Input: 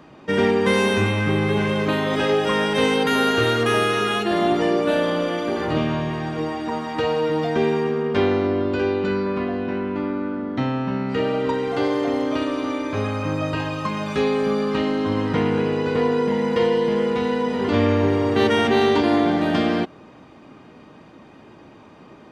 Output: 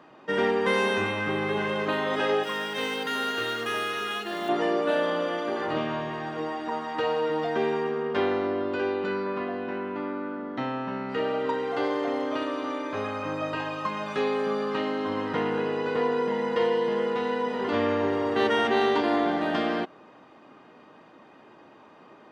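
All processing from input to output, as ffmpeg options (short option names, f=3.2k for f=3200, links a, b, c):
-filter_complex "[0:a]asettb=1/sr,asplit=3[a][b][c];[a]atrim=end=2.434[d];[b]atrim=start=2.43:end=4.49,asetpts=PTS-STARTPTS,afade=t=in:d=0.004:c=qsin,afade=t=out:st=2.056:d=0.004:c=qsin,highpass=f=180:p=1,equalizer=f=670:t=o:w=2.7:g=-8,acrusher=bits=4:mode=log:mix=0:aa=0.000001[e];[c]atrim=start=4.486[f];[d][e]acrossfade=d=0.004:c1=hsin:c2=qsin[g];[g][f]acrossfade=d=0.004:c1=qsin:c2=hsin,highpass=f=670:p=1,highshelf=f=3.5k:g=-11.5,bandreject=f=2.3k:w=15"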